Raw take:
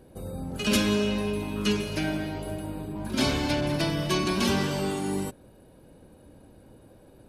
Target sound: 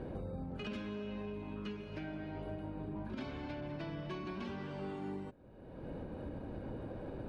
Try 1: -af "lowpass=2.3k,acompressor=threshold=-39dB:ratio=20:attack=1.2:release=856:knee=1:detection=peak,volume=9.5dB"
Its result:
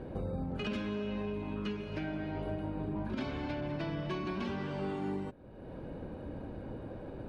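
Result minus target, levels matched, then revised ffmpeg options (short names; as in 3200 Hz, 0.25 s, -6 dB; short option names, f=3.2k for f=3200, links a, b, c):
compressor: peak gain reduction -5.5 dB
-af "lowpass=2.3k,acompressor=threshold=-45dB:ratio=20:attack=1.2:release=856:knee=1:detection=peak,volume=9.5dB"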